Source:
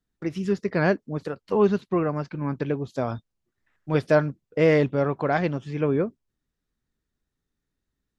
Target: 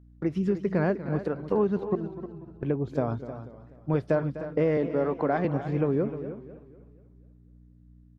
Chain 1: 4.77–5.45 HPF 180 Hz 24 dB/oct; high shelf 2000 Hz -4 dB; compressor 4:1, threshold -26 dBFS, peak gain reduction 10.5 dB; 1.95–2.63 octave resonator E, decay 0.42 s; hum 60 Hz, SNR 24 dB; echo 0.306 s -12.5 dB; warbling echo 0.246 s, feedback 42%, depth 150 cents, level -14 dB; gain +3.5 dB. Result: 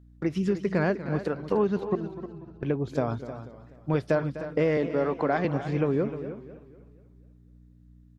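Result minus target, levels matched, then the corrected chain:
4000 Hz band +7.0 dB
4.77–5.45 HPF 180 Hz 24 dB/oct; high shelf 2000 Hz -14.5 dB; compressor 4:1, threshold -26 dBFS, peak gain reduction 10 dB; 1.95–2.63 octave resonator E, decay 0.42 s; hum 60 Hz, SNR 24 dB; echo 0.306 s -12.5 dB; warbling echo 0.246 s, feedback 42%, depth 150 cents, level -14 dB; gain +3.5 dB

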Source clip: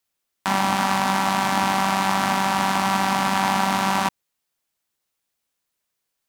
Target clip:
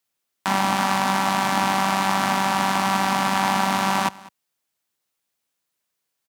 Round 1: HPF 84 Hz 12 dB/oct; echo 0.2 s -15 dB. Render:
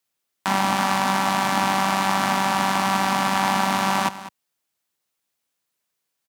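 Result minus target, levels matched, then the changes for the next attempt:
echo-to-direct +6.5 dB
change: echo 0.2 s -21.5 dB

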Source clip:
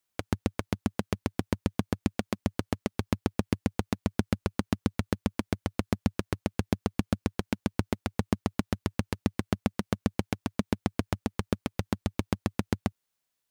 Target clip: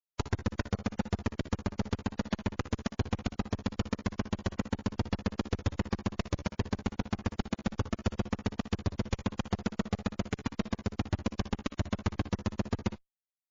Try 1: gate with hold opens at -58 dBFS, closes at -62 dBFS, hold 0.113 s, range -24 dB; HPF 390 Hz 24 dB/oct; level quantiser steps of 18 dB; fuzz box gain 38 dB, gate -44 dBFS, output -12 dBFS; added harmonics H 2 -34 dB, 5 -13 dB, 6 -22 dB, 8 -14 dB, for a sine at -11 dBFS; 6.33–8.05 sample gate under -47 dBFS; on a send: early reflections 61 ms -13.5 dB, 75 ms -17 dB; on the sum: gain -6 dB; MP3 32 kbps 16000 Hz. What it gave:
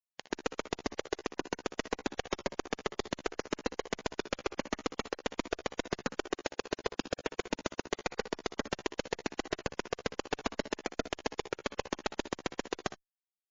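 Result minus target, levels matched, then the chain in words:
500 Hz band +6.0 dB
gate with hold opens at -58 dBFS, closes at -62 dBFS, hold 0.113 s, range -24 dB; level quantiser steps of 18 dB; fuzz box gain 38 dB, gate -44 dBFS, output -12 dBFS; added harmonics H 2 -34 dB, 5 -13 dB, 6 -22 dB, 8 -14 dB, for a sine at -11 dBFS; 6.33–8.05 sample gate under -47 dBFS; on a send: early reflections 61 ms -13.5 dB, 75 ms -17 dB; on the sum: gain -6 dB; MP3 32 kbps 16000 Hz

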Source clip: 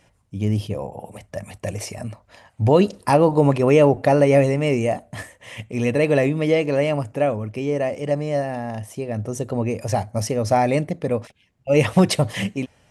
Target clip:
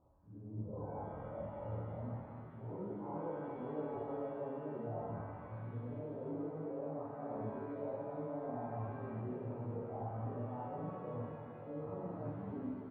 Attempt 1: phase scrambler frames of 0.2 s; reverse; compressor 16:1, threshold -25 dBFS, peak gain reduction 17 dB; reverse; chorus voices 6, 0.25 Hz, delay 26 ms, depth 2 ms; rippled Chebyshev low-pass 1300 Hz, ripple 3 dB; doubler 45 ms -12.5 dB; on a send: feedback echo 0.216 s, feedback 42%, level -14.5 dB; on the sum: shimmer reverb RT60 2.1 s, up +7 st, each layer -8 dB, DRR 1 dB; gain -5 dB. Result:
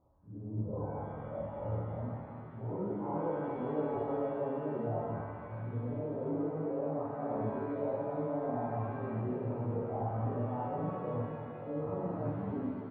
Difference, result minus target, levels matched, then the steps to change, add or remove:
compressor: peak gain reduction -7 dB
change: compressor 16:1, threshold -32.5 dBFS, peak gain reduction 24 dB

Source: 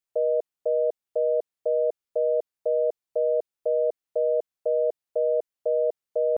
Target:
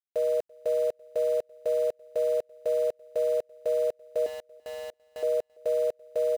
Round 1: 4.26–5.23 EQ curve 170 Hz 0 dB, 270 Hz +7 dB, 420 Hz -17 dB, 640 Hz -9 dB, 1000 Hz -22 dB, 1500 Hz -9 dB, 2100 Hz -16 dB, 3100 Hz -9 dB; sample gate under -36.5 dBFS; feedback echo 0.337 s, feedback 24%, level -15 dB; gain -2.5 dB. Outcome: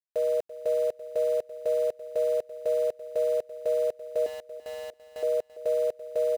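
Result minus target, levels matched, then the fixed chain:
echo-to-direct +11 dB
4.26–5.23 EQ curve 170 Hz 0 dB, 270 Hz +7 dB, 420 Hz -17 dB, 640 Hz -9 dB, 1000 Hz -22 dB, 1500 Hz -9 dB, 2100 Hz -16 dB, 3100 Hz -9 dB; sample gate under -36.5 dBFS; feedback echo 0.337 s, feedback 24%, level -26 dB; gain -2.5 dB

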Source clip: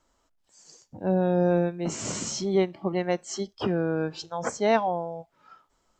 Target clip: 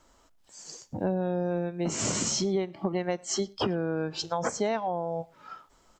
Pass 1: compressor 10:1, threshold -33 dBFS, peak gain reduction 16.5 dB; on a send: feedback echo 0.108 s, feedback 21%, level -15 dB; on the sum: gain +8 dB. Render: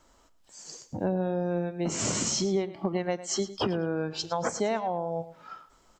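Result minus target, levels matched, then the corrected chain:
echo-to-direct +12 dB
compressor 10:1, threshold -33 dBFS, peak gain reduction 16.5 dB; on a send: feedback echo 0.108 s, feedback 21%, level -27 dB; on the sum: gain +8 dB

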